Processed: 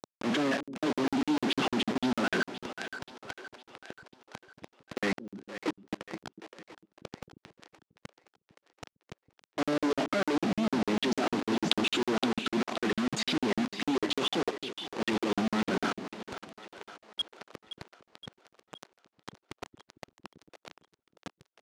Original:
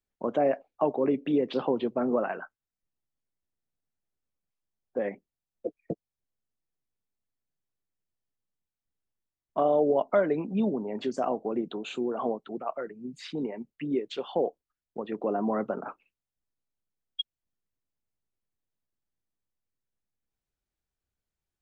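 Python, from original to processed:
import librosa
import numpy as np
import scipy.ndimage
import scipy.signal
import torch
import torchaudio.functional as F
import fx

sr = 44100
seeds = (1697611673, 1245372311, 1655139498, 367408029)

p1 = fx.high_shelf(x, sr, hz=3700.0, db=4.0)
p2 = fx.transient(p1, sr, attack_db=-11, sustain_db=10)
p3 = fx.band_shelf(p2, sr, hz=760.0, db=-13.0, octaves=1.7)
p4 = fx.over_compress(p3, sr, threshold_db=-36.0, ratio=-1.0)
p5 = p3 + F.gain(torch.from_numpy(p4), 1.5).numpy()
p6 = fx.quant_dither(p5, sr, seeds[0], bits=6, dither='none')
p7 = fx.dmg_noise_colour(p6, sr, seeds[1], colour='brown', level_db=-47.0)
p8 = fx.quant_companded(p7, sr, bits=2)
p9 = fx.bandpass_edges(p8, sr, low_hz=180.0, high_hz=5200.0)
p10 = fx.echo_split(p9, sr, split_hz=380.0, low_ms=227, high_ms=520, feedback_pct=52, wet_db=-11.0)
p11 = fx.buffer_crackle(p10, sr, first_s=0.63, period_s=0.15, block=2048, kind='zero')
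y = F.gain(torch.from_numpy(p11), -1.0).numpy()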